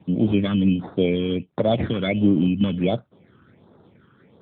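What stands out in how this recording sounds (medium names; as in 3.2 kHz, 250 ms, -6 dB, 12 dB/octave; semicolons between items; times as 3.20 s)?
aliases and images of a low sample rate 2.8 kHz, jitter 0%; phasing stages 12, 1.4 Hz, lowest notch 670–2600 Hz; AMR-NB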